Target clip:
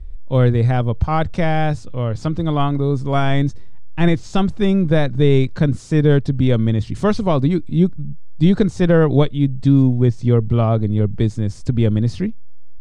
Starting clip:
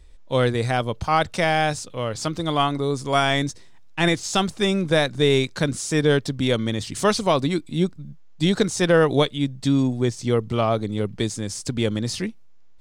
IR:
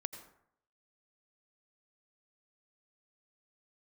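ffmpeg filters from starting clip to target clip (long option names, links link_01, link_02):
-af "aemphasis=mode=reproduction:type=riaa,volume=-1dB"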